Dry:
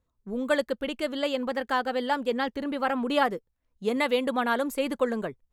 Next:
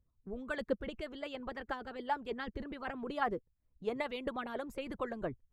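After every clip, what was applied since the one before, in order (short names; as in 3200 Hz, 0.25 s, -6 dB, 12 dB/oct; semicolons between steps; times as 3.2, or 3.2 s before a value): RIAA curve playback; harmonic-percussive split harmonic -15 dB; gain -6 dB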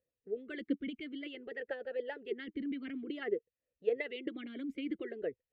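vowel sweep e-i 0.54 Hz; gain +10.5 dB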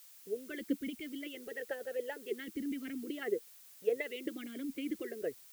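added noise blue -57 dBFS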